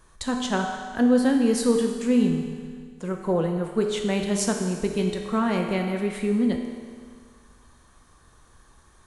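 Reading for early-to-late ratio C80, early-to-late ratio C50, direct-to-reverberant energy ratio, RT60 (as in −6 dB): 6.0 dB, 4.5 dB, 2.5 dB, 1.8 s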